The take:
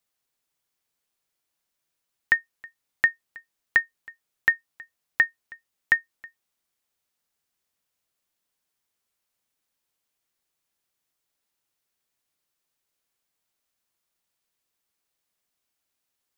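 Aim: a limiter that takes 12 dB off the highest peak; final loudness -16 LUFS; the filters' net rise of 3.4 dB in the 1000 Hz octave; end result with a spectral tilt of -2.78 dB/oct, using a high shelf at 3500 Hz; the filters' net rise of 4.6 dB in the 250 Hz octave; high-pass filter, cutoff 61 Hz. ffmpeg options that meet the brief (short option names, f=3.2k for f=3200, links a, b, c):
-af "highpass=61,equalizer=f=250:t=o:g=6,equalizer=f=1k:t=o:g=3.5,highshelf=f=3.5k:g=6,volume=16.5dB,alimiter=limit=0dB:level=0:latency=1"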